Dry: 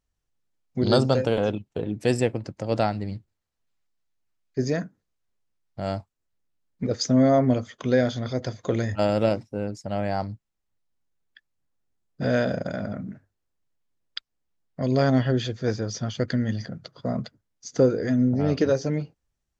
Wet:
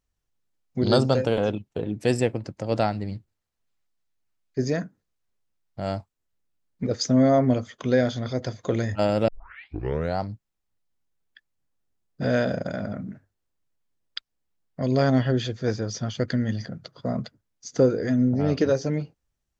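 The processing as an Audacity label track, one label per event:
9.280000	9.280000	tape start 0.92 s

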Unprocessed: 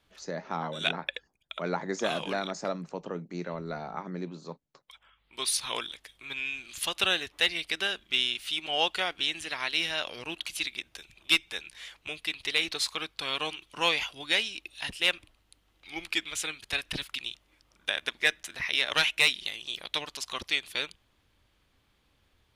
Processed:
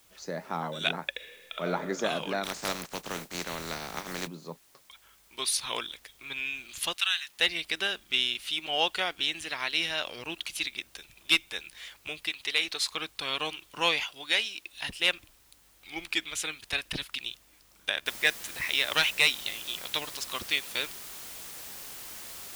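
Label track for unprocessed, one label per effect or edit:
1.140000	1.680000	reverb throw, RT60 1.9 s, DRR 2.5 dB
2.430000	4.260000	spectral contrast reduction exponent 0.32
6.940000	7.400000	Bessel high-pass 1.6 kHz, order 8
12.290000	12.910000	bass shelf 300 Hz -9.5 dB
14.000000	14.740000	bass shelf 260 Hz -11 dB
18.060000	18.060000	noise floor step -62 dB -43 dB

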